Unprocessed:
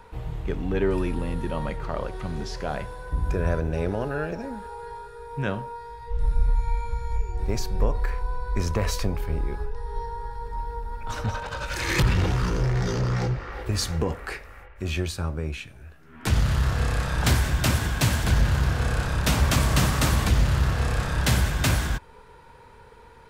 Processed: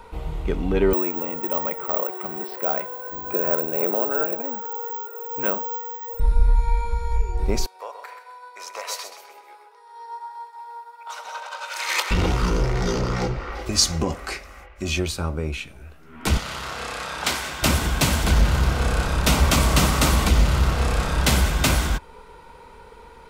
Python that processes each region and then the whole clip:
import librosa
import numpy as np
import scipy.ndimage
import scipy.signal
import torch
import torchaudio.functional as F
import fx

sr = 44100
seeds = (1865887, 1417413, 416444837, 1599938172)

y = fx.chain(x, sr, fx.bandpass_edges(low_hz=340.0, high_hz=2200.0),
    fx.resample_bad(factor=2, down='none', up='zero_stuff'), at=(0.93, 6.2))
y = fx.chain(y, sr, fx.highpass(hz=640.0, slope=24),
    fx.echo_feedback(ms=129, feedback_pct=37, wet_db=-7.0),
    fx.upward_expand(threshold_db=-44.0, expansion=1.5), at=(7.66, 12.11))
y = fx.chain(y, sr, fx.peak_eq(hz=6000.0, db=9.0, octaves=1.1),
    fx.notch_comb(f0_hz=460.0), at=(13.55, 14.99))
y = fx.chain(y, sr, fx.highpass(hz=890.0, slope=6),
    fx.high_shelf(hz=9300.0, db=-8.0), at=(16.37, 17.63))
y = fx.peak_eq(y, sr, hz=110.0, db=-14.0, octaves=0.47)
y = fx.notch(y, sr, hz=1700.0, q=7.2)
y = y * 10.0 ** (5.0 / 20.0)